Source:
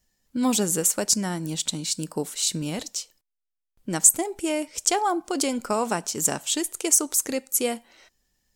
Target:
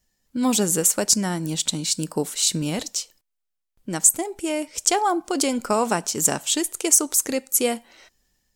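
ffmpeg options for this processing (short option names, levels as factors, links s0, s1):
-af "dynaudnorm=f=320:g=3:m=1.58"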